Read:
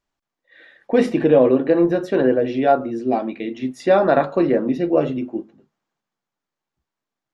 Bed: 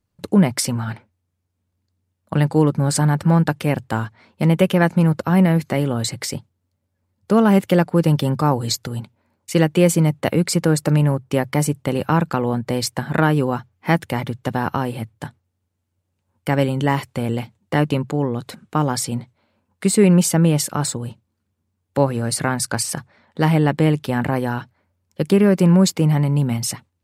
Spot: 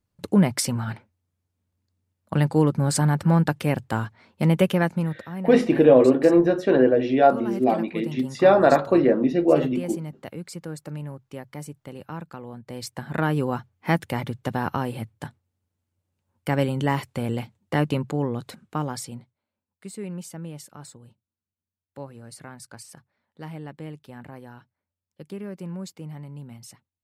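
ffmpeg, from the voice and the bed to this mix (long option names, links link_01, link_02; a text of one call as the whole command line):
ffmpeg -i stem1.wav -i stem2.wav -filter_complex "[0:a]adelay=4550,volume=-0.5dB[link_01];[1:a]volume=10dB,afade=type=out:start_time=4.63:duration=0.64:silence=0.188365,afade=type=in:start_time=12.61:duration=0.93:silence=0.211349,afade=type=out:start_time=18.34:duration=1.08:silence=0.149624[link_02];[link_01][link_02]amix=inputs=2:normalize=0" out.wav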